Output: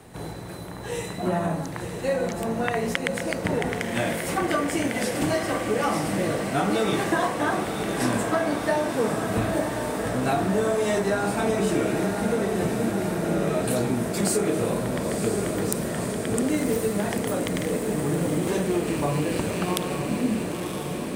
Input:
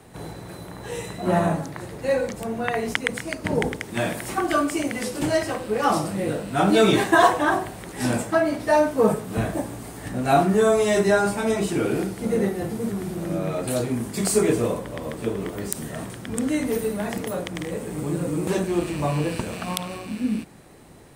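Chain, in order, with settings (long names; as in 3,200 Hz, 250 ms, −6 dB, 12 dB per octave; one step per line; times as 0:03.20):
downward compressor 10 to 1, threshold −22 dBFS, peak gain reduction 12 dB
on a send: feedback delay with all-pass diffusion 1,011 ms, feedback 76%, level −6 dB
on the sum: level +1 dB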